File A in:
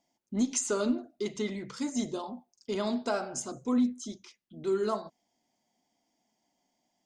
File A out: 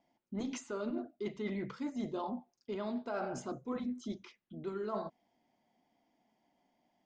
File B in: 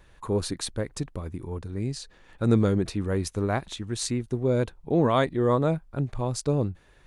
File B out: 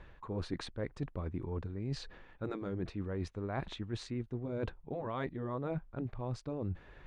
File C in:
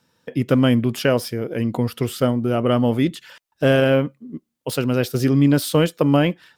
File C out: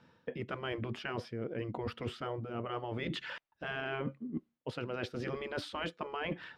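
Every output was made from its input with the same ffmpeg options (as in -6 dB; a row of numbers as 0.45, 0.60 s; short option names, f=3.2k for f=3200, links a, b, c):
-af "lowpass=2.7k,afftfilt=real='re*lt(hypot(re,im),0.562)':imag='im*lt(hypot(re,im),0.562)':win_size=1024:overlap=0.75,areverse,acompressor=threshold=-37dB:ratio=16,areverse,volume=3dB"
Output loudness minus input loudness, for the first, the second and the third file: -8.0, -12.5, -20.0 LU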